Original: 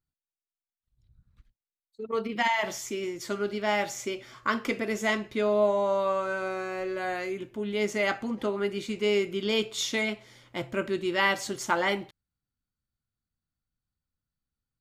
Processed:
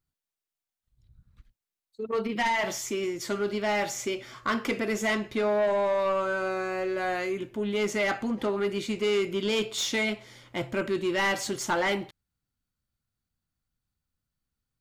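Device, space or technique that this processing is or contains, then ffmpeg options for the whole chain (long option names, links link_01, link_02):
saturation between pre-emphasis and de-emphasis: -af "highshelf=frequency=5500:gain=6.5,asoftclip=type=tanh:threshold=-24dB,highshelf=frequency=5500:gain=-6.5,volume=3.5dB"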